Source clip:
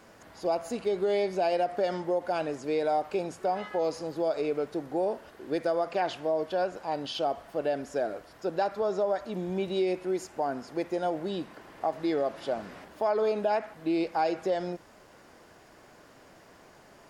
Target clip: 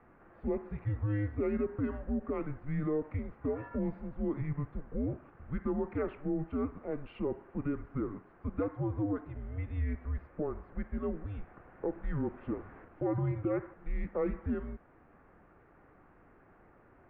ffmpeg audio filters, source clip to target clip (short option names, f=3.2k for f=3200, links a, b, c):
-af "highpass=f=150:w=0.5412,highpass=f=150:w=1.3066,highpass=f=230:t=q:w=0.5412,highpass=f=230:t=q:w=1.307,lowpass=f=2.4k:t=q:w=0.5176,lowpass=f=2.4k:t=q:w=0.7071,lowpass=f=2.4k:t=q:w=1.932,afreqshift=-300,volume=-5dB"